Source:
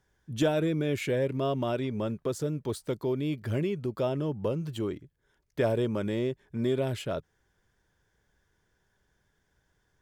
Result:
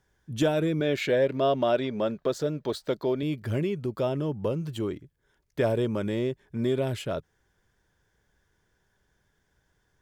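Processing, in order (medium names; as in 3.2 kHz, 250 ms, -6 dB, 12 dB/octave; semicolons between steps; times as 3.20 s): 0.80–3.23 s: fifteen-band graphic EQ 100 Hz -11 dB, 630 Hz +7 dB, 1.6 kHz +5 dB, 4 kHz +7 dB, 10 kHz -9 dB; trim +1.5 dB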